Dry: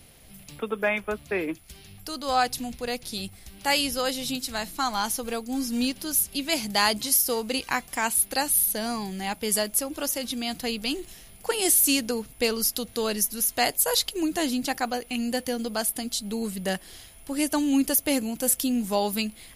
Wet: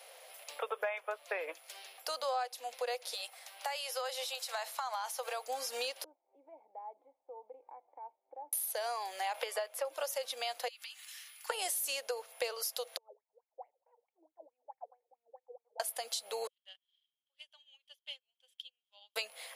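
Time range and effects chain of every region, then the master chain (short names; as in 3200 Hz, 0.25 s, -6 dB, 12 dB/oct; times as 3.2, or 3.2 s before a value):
3.14–5.48 Chebyshev high-pass 740 Hz + compressor, threshold -33 dBFS + hard clip -28 dBFS
6.04–8.53 compressor 2:1, threshold -37 dBFS + vocal tract filter u
9.34–9.85 tone controls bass -12 dB, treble -12 dB + three-band squash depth 100%
10.68–11.5 HPF 1400 Hz 24 dB/oct + comb 3.4 ms, depth 30% + compressor 12:1, threshold -42 dBFS
12.97–15.8 harmonic tremolo 1.4 Hz, depth 50%, crossover 560 Hz + vocal tract filter u + wah 4.6 Hz 410–2800 Hz, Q 8.7
16.47–19.16 band-pass 3200 Hz, Q 14 + upward expander 2.5:1, over -60 dBFS
whole clip: Chebyshev high-pass 510 Hz, order 5; tilt -2.5 dB/oct; compressor, threshold -39 dBFS; gain +5 dB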